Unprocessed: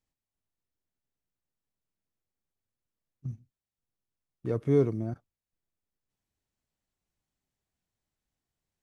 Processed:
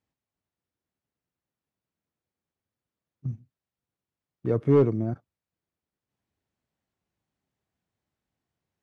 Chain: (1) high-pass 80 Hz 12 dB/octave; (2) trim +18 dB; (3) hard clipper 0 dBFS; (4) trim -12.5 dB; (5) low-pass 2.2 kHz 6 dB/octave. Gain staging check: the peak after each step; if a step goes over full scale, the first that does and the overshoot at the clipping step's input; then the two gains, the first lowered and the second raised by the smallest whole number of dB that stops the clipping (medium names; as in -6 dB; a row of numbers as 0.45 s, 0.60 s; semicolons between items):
-13.0 dBFS, +5.0 dBFS, 0.0 dBFS, -12.5 dBFS, -12.5 dBFS; step 2, 5.0 dB; step 2 +13 dB, step 4 -7.5 dB